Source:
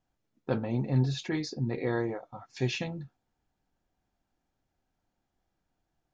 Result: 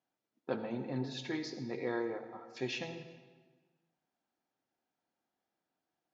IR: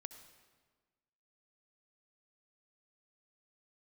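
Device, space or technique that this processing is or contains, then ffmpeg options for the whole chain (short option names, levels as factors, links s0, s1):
supermarket ceiling speaker: -filter_complex "[0:a]highpass=250,lowpass=6200[s0];[1:a]atrim=start_sample=2205[s1];[s0][s1]afir=irnorm=-1:irlink=0,volume=1.12"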